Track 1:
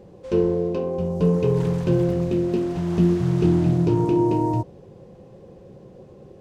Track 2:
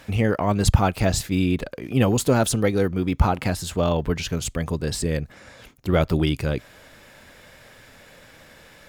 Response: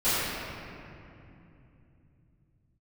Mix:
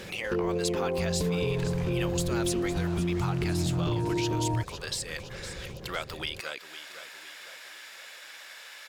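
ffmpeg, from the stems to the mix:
-filter_complex "[0:a]asubboost=boost=5.5:cutoff=85,alimiter=limit=0.119:level=0:latency=1:release=39,volume=1.26[s0];[1:a]highpass=980,equalizer=f=4200:w=0.61:g=5,acompressor=threshold=0.01:ratio=1.5,volume=1.26,asplit=2[s1][s2];[s2]volume=0.211,aecho=0:1:509|1018|1527|2036|2545|3054|3563:1|0.51|0.26|0.133|0.0677|0.0345|0.0176[s3];[s0][s1][s3]amix=inputs=3:normalize=0,acompressor=threshold=0.02:ratio=1.5"

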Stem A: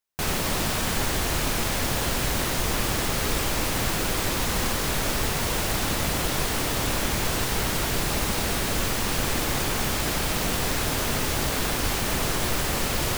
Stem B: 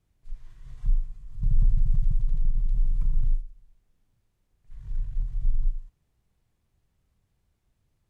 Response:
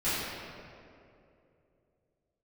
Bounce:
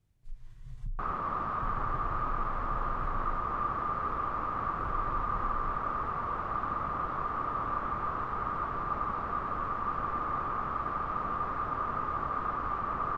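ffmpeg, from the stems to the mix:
-filter_complex "[0:a]lowpass=f=1200:t=q:w=15,adelay=800,volume=0.211[s0];[1:a]equalizer=f=120:t=o:w=0.77:g=7,acompressor=threshold=0.0282:ratio=5,volume=0.668,asplit=3[s1][s2][s3];[s1]atrim=end=1.11,asetpts=PTS-STARTPTS,afade=t=out:st=1.106:d=0.004:c=hsin[s4];[s2]atrim=start=1.11:end=1.62,asetpts=PTS-STARTPTS,volume=0[s5];[s3]atrim=start=1.62,asetpts=PTS-STARTPTS,afade=t=in:d=0.004:c=hsin[s6];[s4][s5][s6]concat=n=3:v=0:a=1[s7];[s0][s7]amix=inputs=2:normalize=0"

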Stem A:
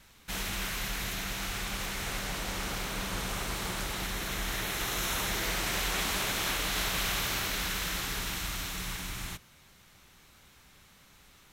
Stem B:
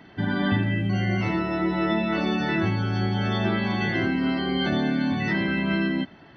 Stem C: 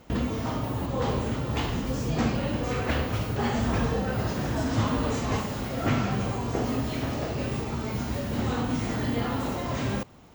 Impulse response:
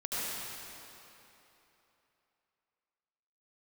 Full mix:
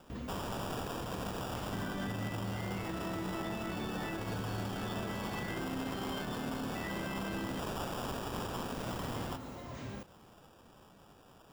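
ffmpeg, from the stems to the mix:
-filter_complex "[0:a]highpass=f=83:w=0.5412,highpass=f=83:w=1.3066,alimiter=level_in=1.06:limit=0.0631:level=0:latency=1,volume=0.944,acrusher=samples=21:mix=1:aa=0.000001,volume=1.06[s0];[1:a]asoftclip=type=tanh:threshold=0.211,adelay=1550,volume=0.422[s1];[2:a]volume=0.178[s2];[s0][s1][s2]amix=inputs=3:normalize=0,alimiter=level_in=1.88:limit=0.0631:level=0:latency=1:release=231,volume=0.531"

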